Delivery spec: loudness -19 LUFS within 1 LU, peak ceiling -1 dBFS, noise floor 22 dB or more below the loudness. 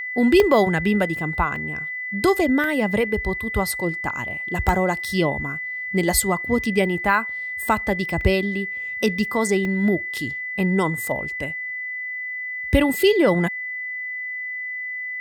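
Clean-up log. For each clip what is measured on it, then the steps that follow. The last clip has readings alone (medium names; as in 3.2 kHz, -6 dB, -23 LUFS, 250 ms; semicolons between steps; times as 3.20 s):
dropouts 6; longest dropout 1.1 ms; steady tone 2 kHz; tone level -27 dBFS; loudness -22.0 LUFS; peak level -4.5 dBFS; loudness target -19.0 LUFS
-> interpolate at 0.40/1.56/2.64/4.69/8.21/9.65 s, 1.1 ms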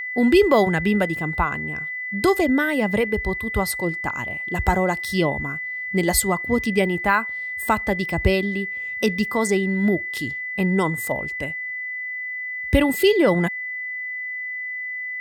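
dropouts 0; steady tone 2 kHz; tone level -27 dBFS
-> band-stop 2 kHz, Q 30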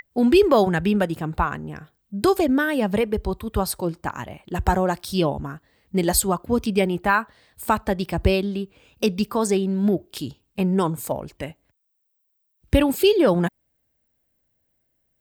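steady tone not found; loudness -22.0 LUFS; peak level -5.0 dBFS; loudness target -19.0 LUFS
-> trim +3 dB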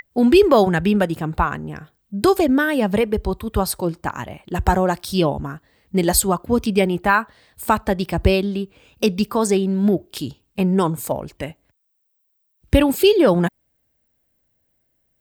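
loudness -19.0 LUFS; peak level -2.0 dBFS; noise floor -69 dBFS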